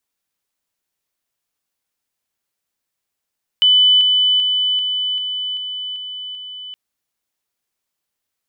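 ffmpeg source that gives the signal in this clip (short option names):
-f lavfi -i "aevalsrc='pow(10,(-8.5-3*floor(t/0.39))/20)*sin(2*PI*3000*t)':d=3.12:s=44100"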